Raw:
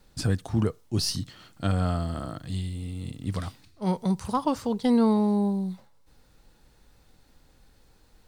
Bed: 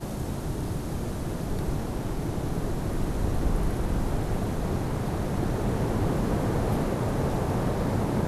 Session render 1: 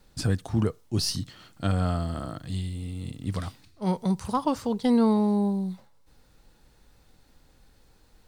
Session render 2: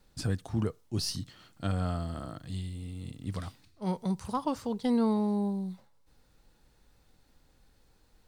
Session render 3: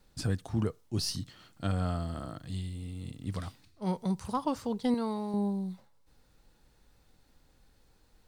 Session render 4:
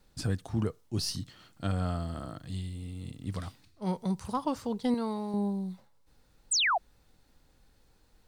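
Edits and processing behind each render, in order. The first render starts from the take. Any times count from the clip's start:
no processing that can be heard
level −5.5 dB
0:04.94–0:05.34: low-shelf EQ 470 Hz −9.5 dB
0:06.51–0:06.78: sound drawn into the spectrogram fall 630–9,000 Hz −26 dBFS

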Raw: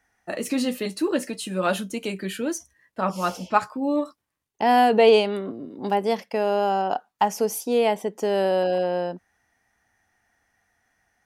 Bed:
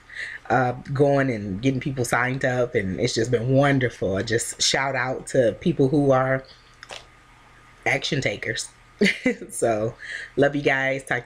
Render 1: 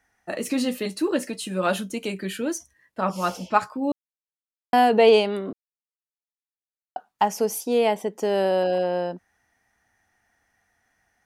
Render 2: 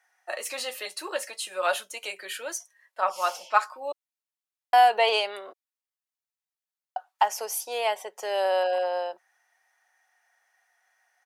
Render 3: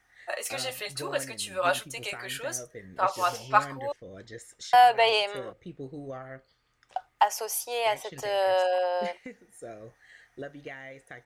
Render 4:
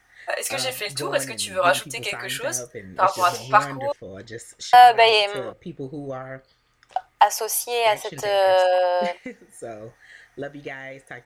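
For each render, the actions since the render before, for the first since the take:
0:03.92–0:04.73: silence; 0:05.53–0:06.96: silence
high-pass filter 610 Hz 24 dB per octave; comb filter 5.4 ms, depth 31%
mix in bed −21 dB
level +7 dB; brickwall limiter −2 dBFS, peak gain reduction 3 dB

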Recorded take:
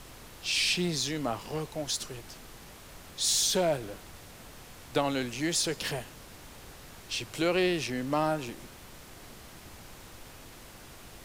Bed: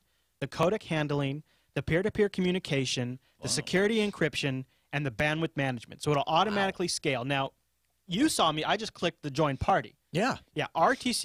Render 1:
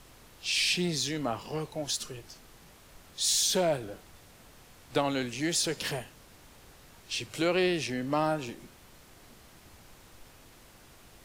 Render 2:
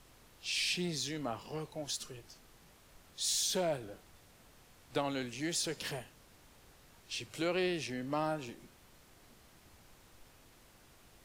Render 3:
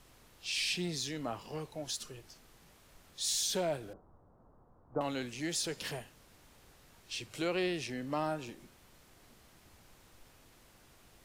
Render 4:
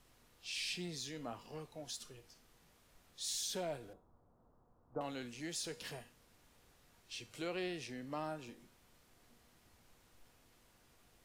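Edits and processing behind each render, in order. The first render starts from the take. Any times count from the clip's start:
noise reduction from a noise print 6 dB
level −6.5 dB
0:03.93–0:05.01: Butterworth low-pass 1,200 Hz
tuned comb filter 240 Hz, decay 0.42 s, harmonics all, mix 60%

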